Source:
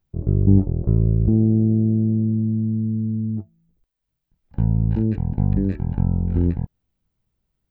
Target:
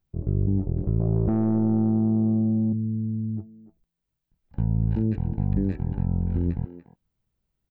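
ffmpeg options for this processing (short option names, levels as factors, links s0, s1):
-filter_complex "[0:a]asplit=2[s0][s1];[s1]adelay=290,highpass=300,lowpass=3400,asoftclip=type=hard:threshold=0.211,volume=0.251[s2];[s0][s2]amix=inputs=2:normalize=0,asettb=1/sr,asplit=3[s3][s4][s5];[s3]atrim=end=1.004[s6];[s4]atrim=start=1:end=2.73,asetpts=PTS-STARTPTS,afade=t=in:d=0.004:c=qsin,afade=t=out:st=1.726:d=0.004:c=qsin,asplit=2[s7][s8];[s8]highpass=f=720:p=1,volume=12.6,asoftclip=type=tanh:threshold=0.422[s9];[s7][s9]amix=inputs=2:normalize=0,lowpass=f=1200:p=1,volume=0.501[s10];[s5]atrim=start=2.726[s11];[s6][s10]acrossfade=d=0.004:c1=hsin:c2=qsin[s12];[s12][s11]acrossfade=d=0.004:c1=qsin:c2=hsin,alimiter=limit=0.266:level=0:latency=1:release=81,volume=0.668"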